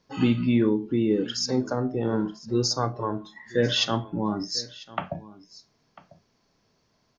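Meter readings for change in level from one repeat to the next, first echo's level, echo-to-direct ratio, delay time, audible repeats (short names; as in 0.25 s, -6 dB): no steady repeat, -20.0 dB, -20.0 dB, 0.996 s, 1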